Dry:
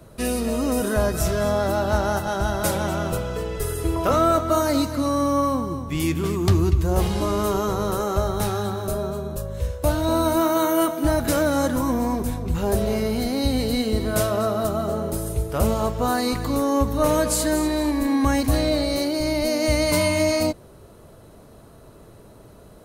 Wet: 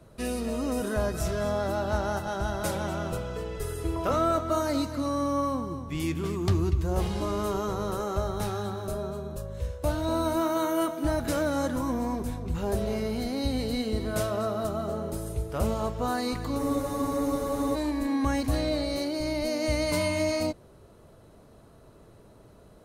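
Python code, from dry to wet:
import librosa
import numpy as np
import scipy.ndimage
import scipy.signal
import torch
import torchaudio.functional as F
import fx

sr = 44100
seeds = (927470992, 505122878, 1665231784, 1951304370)

y = fx.high_shelf(x, sr, hz=12000.0, db=-10.0)
y = fx.spec_freeze(y, sr, seeds[0], at_s=16.61, hold_s=1.15)
y = y * 10.0 ** (-6.5 / 20.0)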